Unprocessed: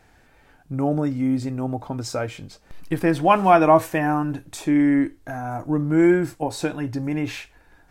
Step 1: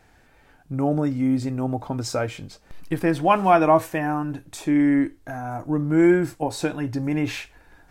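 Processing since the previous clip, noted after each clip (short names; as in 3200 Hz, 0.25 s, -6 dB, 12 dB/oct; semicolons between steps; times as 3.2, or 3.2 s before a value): vocal rider within 4 dB 2 s; gain -2 dB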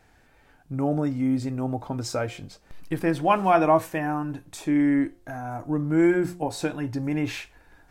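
de-hum 176.8 Hz, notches 7; gain -2.5 dB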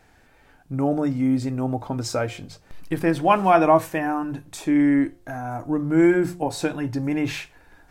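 notches 50/100/150 Hz; gain +3 dB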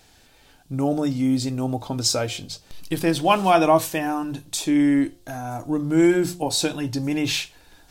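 resonant high shelf 2600 Hz +9.5 dB, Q 1.5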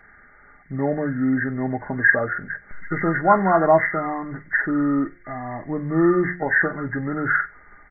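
nonlinear frequency compression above 1100 Hz 4:1; comb 4.9 ms, depth 41%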